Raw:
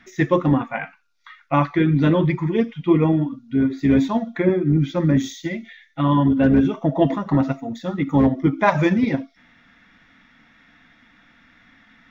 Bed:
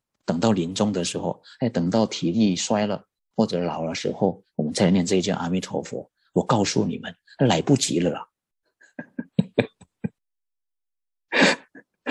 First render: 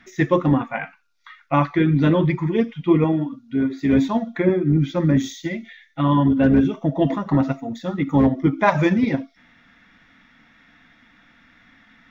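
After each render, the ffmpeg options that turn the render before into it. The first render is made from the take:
-filter_complex "[0:a]asettb=1/sr,asplit=3[s0][s1][s2];[s0]atrim=end=3.044[s3];[s1]atrim=start=3.04:end=3.93,asetpts=PTS-STARTPTS,afade=t=in:d=0.004:c=qsin,afade=t=out:st=0.886:d=0.004:c=qsin,lowshelf=f=140:g=-9[s4];[s2]atrim=start=3.926[s5];[s3][s4]acrossfade=d=0.004:c1=hsin:c2=qsin[s6];[s6][s5]acrossfade=d=0.004:c1=qsin:c2=hsin,asettb=1/sr,asplit=3[s7][s8][s9];[s7]atrim=end=6.644[s10];[s8]atrim=start=6.64:end=7.07,asetpts=PTS-STARTPTS,afade=t=in:d=0.004:c=qsin,afade=t=out:st=0.426:d=0.004:c=qsin,equalizer=f=990:w=0.74:g=-5.5[s11];[s9]atrim=start=7.066[s12];[s10][s11]acrossfade=d=0.004:c1=hsin:c2=qsin[s13];[s13][s12]acrossfade=d=0.004:c1=qsin:c2=hsin"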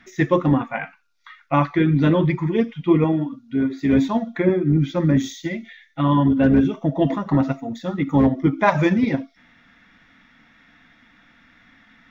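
-af anull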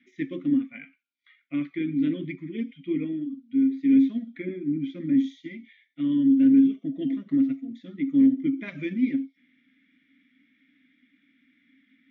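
-filter_complex "[0:a]asplit=3[s0][s1][s2];[s0]bandpass=f=270:t=q:w=8,volume=1[s3];[s1]bandpass=f=2290:t=q:w=8,volume=0.501[s4];[s2]bandpass=f=3010:t=q:w=8,volume=0.355[s5];[s3][s4][s5]amix=inputs=3:normalize=0"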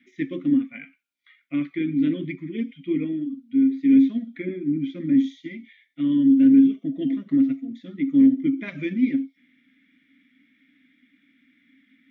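-af "volume=1.41"

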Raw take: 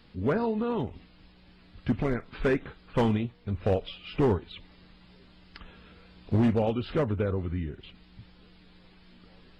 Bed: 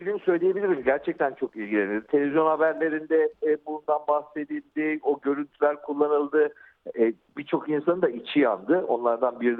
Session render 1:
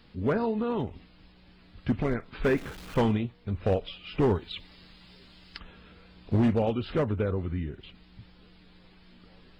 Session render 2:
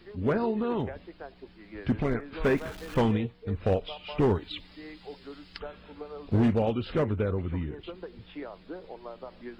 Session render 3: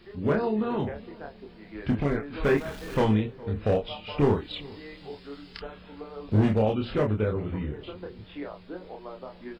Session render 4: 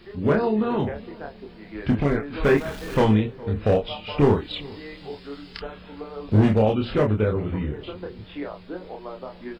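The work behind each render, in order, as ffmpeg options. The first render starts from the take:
-filter_complex "[0:a]asettb=1/sr,asplit=3[s0][s1][s2];[s0]atrim=end=2.444[s3];[s1]atrim=start=2.44:end=3,asetpts=PTS-STARTPTS,afade=t=in:d=0.004:c=qsin,afade=t=out:st=0.556:d=0.004:c=qsin,aeval=exprs='val(0)+0.5*0.00944*sgn(val(0))':c=same[s4];[s2]atrim=start=2.996[s5];[s3][s4]acrossfade=d=0.004:c1=hsin:c2=qsin[s6];[s6][s5]acrossfade=d=0.004:c1=qsin:c2=hsin,asettb=1/sr,asplit=3[s7][s8][s9];[s7]atrim=end=4.354[s10];[s8]atrim=start=4.35:end=5.59,asetpts=PTS-STARTPTS,afade=t=in:d=0.004:c=qsin,afade=t=out:st=1.236:d=0.004:c=qsin,highshelf=f=2700:g=10.5[s11];[s9]atrim=start=5.586[s12];[s10][s11]acrossfade=d=0.004:c1=hsin:c2=qsin[s13];[s13][s12]acrossfade=d=0.004:c1=qsin:c2=hsin"
-filter_complex "[1:a]volume=0.112[s0];[0:a][s0]amix=inputs=2:normalize=0"
-filter_complex "[0:a]asplit=2[s0][s1];[s1]adelay=28,volume=0.708[s2];[s0][s2]amix=inputs=2:normalize=0,asplit=2[s3][s4];[s4]adelay=413,lowpass=f=1500:p=1,volume=0.0891,asplit=2[s5][s6];[s6]adelay=413,lowpass=f=1500:p=1,volume=0.42,asplit=2[s7][s8];[s8]adelay=413,lowpass=f=1500:p=1,volume=0.42[s9];[s3][s5][s7][s9]amix=inputs=4:normalize=0"
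-af "volume=1.68"

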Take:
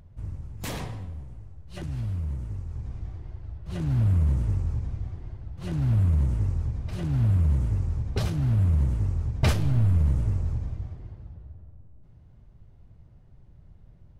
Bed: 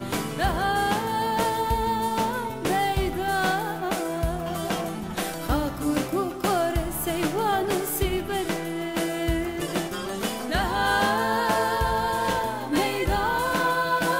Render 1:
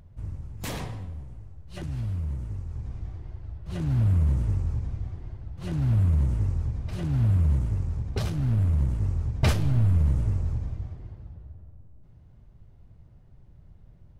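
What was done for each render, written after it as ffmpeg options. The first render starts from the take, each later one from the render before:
-filter_complex "[0:a]asettb=1/sr,asplit=3[s0][s1][s2];[s0]atrim=end=7.594[s3];[s1]atrim=start=7.59:end=9.03,asetpts=PTS-STARTPTS,afade=t=in:d=0.004:c=qsin,afade=t=out:st=1.436:d=0.004:c=qsin,aeval=exprs='if(lt(val(0),0),0.708*val(0),val(0))':c=same[s4];[s2]atrim=start=9.026[s5];[s3][s4]acrossfade=d=0.004:c1=hsin:c2=qsin[s6];[s6][s5]acrossfade=d=0.004:c1=qsin:c2=hsin"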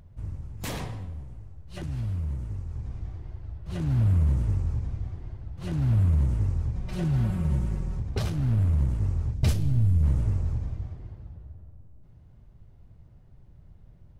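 -filter_complex "[0:a]asettb=1/sr,asplit=3[s0][s1][s2];[s0]atrim=end=6.754[s3];[s1]atrim=start=6.75:end=8,asetpts=PTS-STARTPTS,afade=t=in:d=0.004:c=qsin,afade=t=out:st=1.246:d=0.004:c=qsin,aecho=1:1:5.4:0.77,atrim=end_sample=55125[s4];[s2]atrim=start=7.996[s5];[s3][s4]acrossfade=d=0.004:c1=hsin:c2=qsin[s6];[s6][s5]acrossfade=d=0.004:c1=qsin:c2=hsin,asettb=1/sr,asplit=3[s7][s8][s9];[s7]atrim=end=9.344[s10];[s8]atrim=start=9.34:end=10.03,asetpts=PTS-STARTPTS,afade=t=in:d=0.004:c=qsin,afade=t=out:st=0.686:d=0.004:c=qsin,equalizer=f=1200:w=0.41:g=-11.5[s11];[s9]atrim=start=10.026[s12];[s10][s11]acrossfade=d=0.004:c1=hsin:c2=qsin[s13];[s13][s12]acrossfade=d=0.004:c1=qsin:c2=hsin"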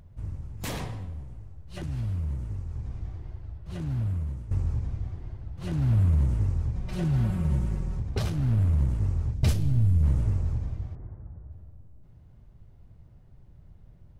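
-filter_complex "[0:a]asettb=1/sr,asplit=3[s0][s1][s2];[s0]atrim=end=10.954[s3];[s1]atrim=start=10.95:end=11.52,asetpts=PTS-STARTPTS,afade=t=in:d=0.004:c=qsin,afade=t=out:st=0.566:d=0.004:c=qsin,lowpass=f=1700:w=0.5412,lowpass=f=1700:w=1.3066[s4];[s2]atrim=start=11.516[s5];[s3][s4]acrossfade=d=0.004:c1=hsin:c2=qsin[s6];[s6][s5]acrossfade=d=0.004:c1=qsin:c2=hsin,asplit=2[s7][s8];[s7]atrim=end=4.51,asetpts=PTS-STARTPTS,afade=t=out:st=3.28:d=1.23:silence=0.177828[s9];[s8]atrim=start=4.51,asetpts=PTS-STARTPTS,afade=t=in:d=0.004:c=hsin:silence=0.177828[s10];[s9][s10]concat=n=2:v=0:a=1"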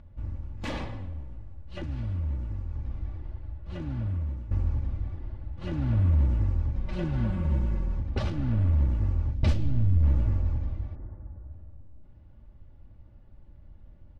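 -af "lowpass=3600,aecho=1:1:3.5:0.55"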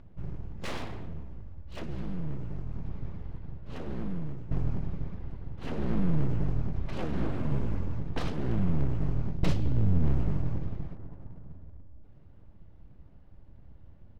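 -af "aeval=exprs='abs(val(0))':c=same"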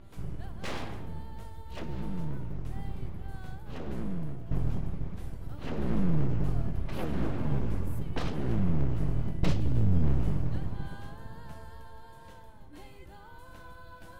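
-filter_complex "[1:a]volume=0.0398[s0];[0:a][s0]amix=inputs=2:normalize=0"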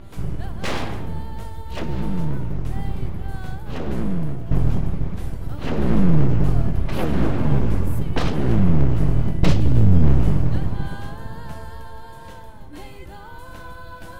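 -af "volume=3.55,alimiter=limit=0.794:level=0:latency=1"

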